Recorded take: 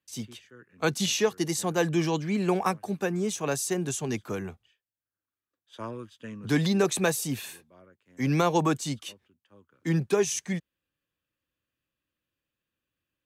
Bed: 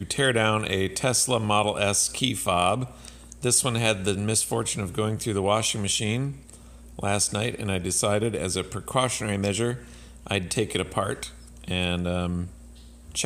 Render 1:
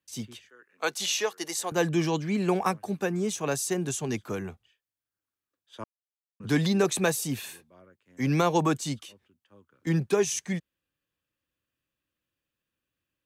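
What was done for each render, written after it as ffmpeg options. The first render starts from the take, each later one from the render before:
-filter_complex "[0:a]asettb=1/sr,asplit=3[a][b][c];[a]atrim=end=0.494[d];[b]atrim=start=0.49:end=1.72,asetpts=PTS-STARTPTS,afade=t=in:d=0.004:c=qsin,afade=t=out:st=1.226:d=0.004:c=qsin,highpass=530[e];[c]atrim=start=1.716[f];[d][e]acrossfade=d=0.004:c1=hsin:c2=qsin[g];[g][f]acrossfade=d=0.004:c1=qsin:c2=hsin,asettb=1/sr,asplit=3[h][i][j];[h]atrim=end=9.054[k];[i]atrim=start=9.05:end=9.87,asetpts=PTS-STARTPTS,afade=t=in:d=0.004:c=qsin,afade=t=out:st=0.816:d=0.004:c=qsin,acompressor=threshold=-44dB:ratio=4:attack=3.2:release=140:knee=1:detection=peak[l];[j]atrim=start=9.866[m];[k][l]acrossfade=d=0.004:c1=hsin:c2=qsin[n];[n][m]acrossfade=d=0.004:c1=qsin:c2=hsin,asplit=3[o][p][q];[o]atrim=end=5.84,asetpts=PTS-STARTPTS,afade=t=out:st=5.836:d=0.004:c=hsin[r];[p]atrim=start=5.84:end=6.4,asetpts=PTS-STARTPTS,volume=0[s];[q]atrim=start=6.4,asetpts=PTS-STARTPTS,afade=t=in:d=0.004:c=hsin[t];[r][s][t]concat=n=3:v=0:a=1"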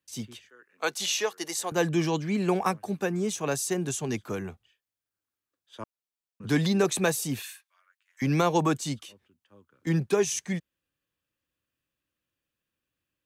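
-filter_complex "[0:a]asettb=1/sr,asplit=3[a][b][c];[a]atrim=end=7.424[d];[b]atrim=start=7.42:end=8.22,asetpts=PTS-STARTPTS,afade=t=in:d=0.004:c=qsin,afade=t=out:st=0.796:d=0.004:c=qsin,highpass=f=1.3k:w=0.5412,highpass=f=1.3k:w=1.3066[e];[c]atrim=start=8.216[f];[d][e]acrossfade=d=0.004:c1=hsin:c2=qsin[g];[g][f]acrossfade=d=0.004:c1=qsin:c2=hsin"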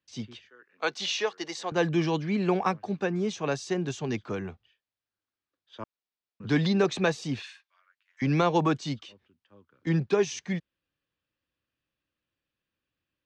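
-af "lowpass=f=5.1k:w=0.5412,lowpass=f=5.1k:w=1.3066"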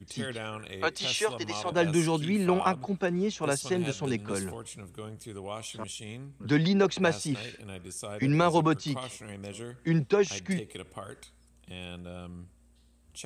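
-filter_complex "[1:a]volume=-15.5dB[a];[0:a][a]amix=inputs=2:normalize=0"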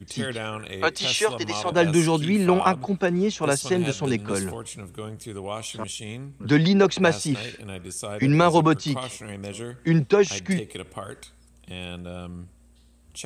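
-af "volume=6dB"

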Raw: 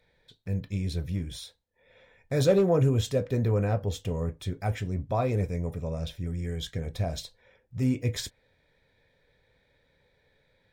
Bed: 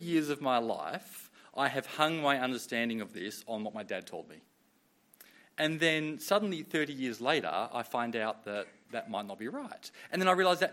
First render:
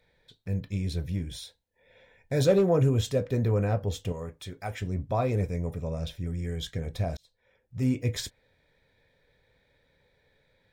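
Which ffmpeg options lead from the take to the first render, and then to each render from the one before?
-filter_complex "[0:a]asettb=1/sr,asplit=3[a][b][c];[a]atrim=end=1.024[d];[b]atrim=start=1.02:end=2.44,asetpts=PTS-STARTPTS,afade=t=in:d=0.004:c=qsin,afade=t=out:st=1.416:d=0.004:c=qsin,asuperstop=centerf=1200:order=4:qfactor=4.5[e];[c]atrim=start=2.436[f];[d][e]acrossfade=d=0.004:c1=hsin:c2=qsin[g];[g][f]acrossfade=d=0.004:c1=qsin:c2=hsin,asettb=1/sr,asplit=3[h][i][j];[h]atrim=end=4.124[k];[i]atrim=start=4.12:end=4.82,asetpts=PTS-STARTPTS,afade=t=in:d=0.004:c=qsin,afade=t=out:st=0.696:d=0.004:c=qsin,lowshelf=f=390:g=-10[l];[j]atrim=start=4.816[m];[k][l]acrossfade=d=0.004:c1=hsin:c2=qsin[n];[n][m]acrossfade=d=0.004:c1=qsin:c2=hsin,asplit=2[o][p];[o]atrim=end=7.17,asetpts=PTS-STARTPTS,afade=t=out:st=7.166:d=0.004:c=hsin[q];[p]atrim=start=7.17,asetpts=PTS-STARTPTS,afade=t=in:d=0.71[r];[q][r]concat=n=2:v=0:a=1"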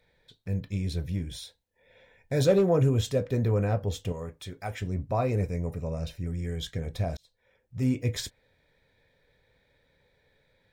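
-filter_complex "[0:a]asettb=1/sr,asplit=3[a][b][c];[a]atrim=end=5.024[d];[b]atrim=start=5.02:end=6.32,asetpts=PTS-STARTPTS,afade=t=in:d=0.004:c=qsin,afade=t=out:st=1.296:d=0.004:c=qsin,asuperstop=centerf=3400:order=4:qfactor=6.9[e];[c]atrim=start=6.316[f];[d][e]acrossfade=d=0.004:c1=hsin:c2=qsin[g];[g][f]acrossfade=d=0.004:c1=qsin:c2=hsin"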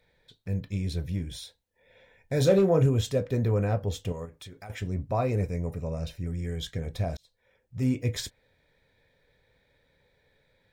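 -filter_complex "[0:a]asettb=1/sr,asplit=3[a][b][c];[a]atrim=end=2.354[d];[b]atrim=start=2.35:end=2.86,asetpts=PTS-STARTPTS,afade=t=in:d=0.004:c=qsin,afade=t=out:st=0.506:d=0.004:c=qsin,asplit=2[e][f];[f]adelay=31,volume=-9.5dB[g];[e][g]amix=inputs=2:normalize=0,atrim=end_sample=22491[h];[c]atrim=start=2.856[i];[d][h]acrossfade=d=0.004:c1=hsin:c2=qsin[j];[j][i]acrossfade=d=0.004:c1=qsin:c2=hsin,asettb=1/sr,asplit=3[k][l][m];[k]atrim=end=4.254[n];[l]atrim=start=4.25:end=4.7,asetpts=PTS-STARTPTS,afade=t=in:d=0.004:c=qsin,afade=t=out:st=0.446:d=0.004:c=qsin,acompressor=threshold=-40dB:ratio=6:attack=3.2:release=140:knee=1:detection=peak[o];[m]atrim=start=4.696[p];[n][o]acrossfade=d=0.004:c1=hsin:c2=qsin[q];[q][p]acrossfade=d=0.004:c1=qsin:c2=hsin"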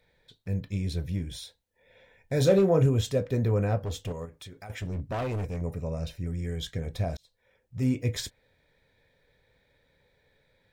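-filter_complex "[0:a]asettb=1/sr,asplit=3[a][b][c];[a]atrim=end=3.794[d];[b]atrim=start=3.79:end=5.61,asetpts=PTS-STARTPTS,afade=t=in:d=0.004:c=qsin,afade=t=out:st=1.816:d=0.004:c=qsin,asoftclip=type=hard:threshold=-28dB[e];[c]atrim=start=5.606[f];[d][e]acrossfade=d=0.004:c1=hsin:c2=qsin[g];[g][f]acrossfade=d=0.004:c1=qsin:c2=hsin"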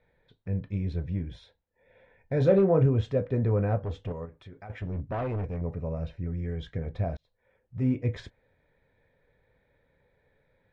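-af "lowpass=1.9k"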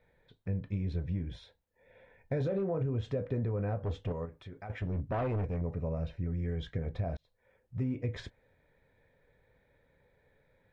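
-af "alimiter=limit=-20dB:level=0:latency=1:release=79,acompressor=threshold=-29dB:ratio=6"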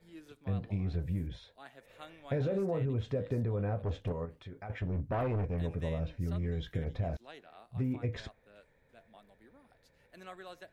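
-filter_complex "[1:a]volume=-22dB[a];[0:a][a]amix=inputs=2:normalize=0"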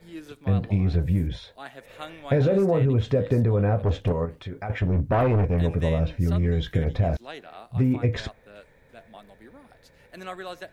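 -af "volume=11.5dB"

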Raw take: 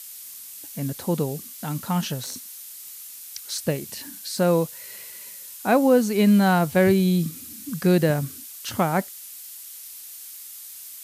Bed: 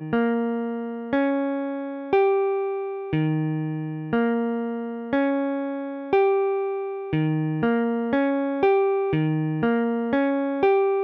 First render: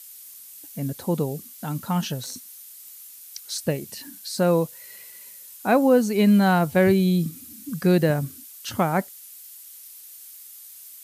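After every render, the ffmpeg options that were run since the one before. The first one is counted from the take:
-af "afftdn=nr=6:nf=-41"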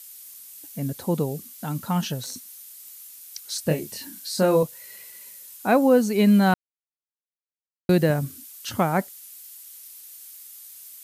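-filter_complex "[0:a]asettb=1/sr,asplit=3[a][b][c];[a]atrim=end=3.634[d];[b]atrim=start=3.63:end=4.63,asetpts=PTS-STARTPTS,afade=t=in:d=0.004:c=qsin,afade=t=out:st=0.996:d=0.004:c=qsin,asplit=2[e][f];[f]adelay=26,volume=-4dB[g];[e][g]amix=inputs=2:normalize=0,atrim=end_sample=44100[h];[c]atrim=start=4.626[i];[d][h]acrossfade=d=0.004:c1=hsin:c2=qsin[j];[j][i]acrossfade=d=0.004:c1=qsin:c2=hsin,asplit=3[k][l][m];[k]atrim=end=6.54,asetpts=PTS-STARTPTS,afade=t=out:st=6.536:d=0.004:c=hsin[n];[l]atrim=start=6.54:end=7.89,asetpts=PTS-STARTPTS,volume=0[o];[m]atrim=start=7.89,asetpts=PTS-STARTPTS,afade=t=in:d=0.004:c=hsin[p];[n][o][p]concat=n=3:v=0:a=1"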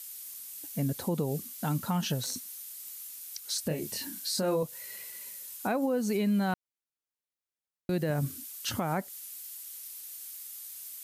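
-af "acompressor=threshold=-22dB:ratio=2.5,alimiter=limit=-21dB:level=0:latency=1:release=149"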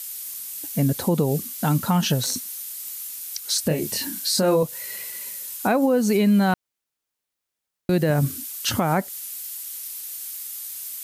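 -af "volume=9.5dB"

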